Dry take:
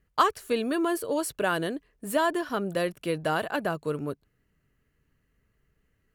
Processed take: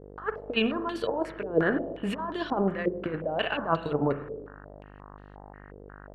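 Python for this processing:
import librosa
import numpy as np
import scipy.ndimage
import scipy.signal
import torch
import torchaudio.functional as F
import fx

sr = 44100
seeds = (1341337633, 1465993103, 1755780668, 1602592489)

y = fx.transient(x, sr, attack_db=1, sustain_db=-8)
y = fx.over_compress(y, sr, threshold_db=-31.0, ratio=-0.5)
y = fx.rev_spring(y, sr, rt60_s=1.1, pass_ms=(36, 50), chirp_ms=80, drr_db=8.5)
y = fx.dmg_buzz(y, sr, base_hz=50.0, harmonics=37, level_db=-51.0, tilt_db=-4, odd_only=False)
y = fx.filter_held_lowpass(y, sr, hz=5.6, low_hz=460.0, high_hz=3700.0)
y = y * librosa.db_to_amplitude(1.5)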